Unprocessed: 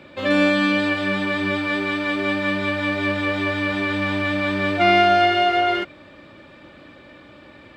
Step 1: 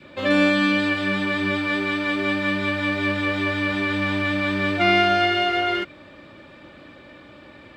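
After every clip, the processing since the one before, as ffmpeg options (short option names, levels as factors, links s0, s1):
-af "adynamicequalizer=threshold=0.0282:dfrequency=690:dqfactor=1.4:tfrequency=690:tqfactor=1.4:attack=5:release=100:ratio=0.375:range=3:mode=cutabove:tftype=bell"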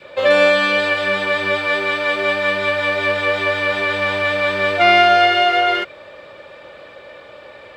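-af "lowshelf=f=370:t=q:w=3:g=-8.5,volume=1.88"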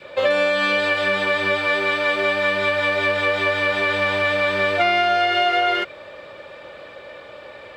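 -af "acompressor=threshold=0.178:ratio=6"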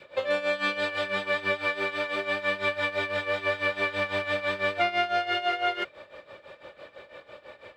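-af "tremolo=f=6:d=0.8,volume=0.562"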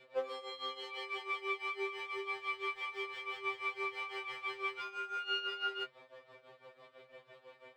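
-af "afftfilt=real='re*2.45*eq(mod(b,6),0)':imag='im*2.45*eq(mod(b,6),0)':win_size=2048:overlap=0.75,volume=0.398"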